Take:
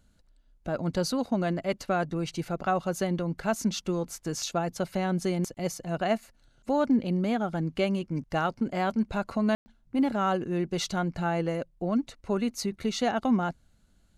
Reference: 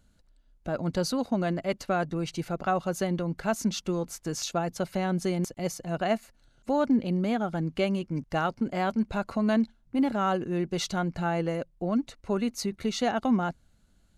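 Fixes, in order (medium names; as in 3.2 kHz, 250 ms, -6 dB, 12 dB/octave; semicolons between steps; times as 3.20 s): room tone fill 9.55–9.66 s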